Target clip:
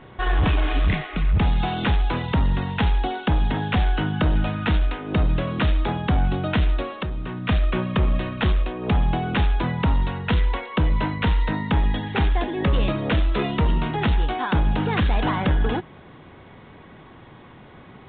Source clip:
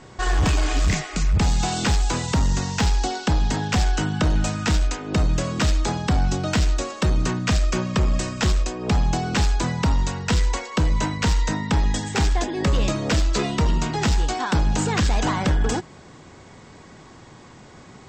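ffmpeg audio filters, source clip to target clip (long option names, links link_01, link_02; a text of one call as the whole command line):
ffmpeg -i in.wav -filter_complex "[0:a]asettb=1/sr,asplit=3[link_01][link_02][link_03];[link_01]atrim=end=6.894[link_04];[link_02]atrim=start=6.89:end=7.49,asetpts=PTS-STARTPTS,afade=type=in:duration=0.004:curve=qsin,afade=type=out:start_time=0.596:duration=0.004:curve=qsin,acompressor=threshold=-27dB:ratio=4[link_05];[link_03]atrim=start=7.486[link_06];[link_04][link_05]acrossfade=duration=0.004:curve1=hsin:curve2=qsin[link_07];[link_07][link_06]acrossfade=duration=0.004:curve1=qsin:curve2=hsin" -ar 8000 -c:a pcm_mulaw out.wav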